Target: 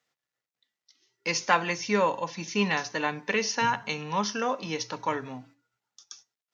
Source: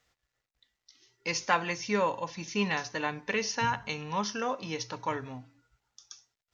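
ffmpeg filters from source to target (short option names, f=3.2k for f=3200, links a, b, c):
-af "agate=range=-9dB:threshold=-56dB:ratio=16:detection=peak,highpass=f=140:w=0.5412,highpass=f=140:w=1.3066,volume=3.5dB"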